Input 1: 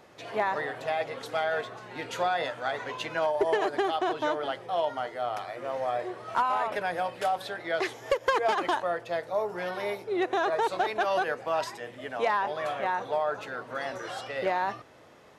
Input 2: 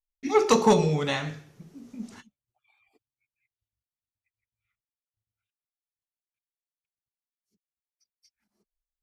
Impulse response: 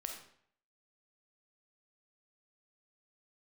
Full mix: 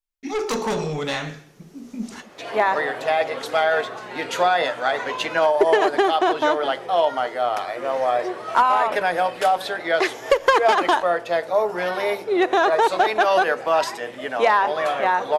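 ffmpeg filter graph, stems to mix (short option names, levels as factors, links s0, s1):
-filter_complex "[0:a]bandreject=f=50:t=h:w=6,bandreject=f=100:t=h:w=6,bandreject=f=150:t=h:w=6,bandreject=f=200:t=h:w=6,adelay=2200,volume=0.75,asplit=2[s0][s1];[s1]volume=0.188[s2];[1:a]asoftclip=type=tanh:threshold=0.0794,volume=1.26[s3];[2:a]atrim=start_sample=2205[s4];[s2][s4]afir=irnorm=-1:irlink=0[s5];[s0][s3][s5]amix=inputs=3:normalize=0,equalizer=f=96:w=1.4:g=-13,dynaudnorm=f=720:g=5:m=3.55"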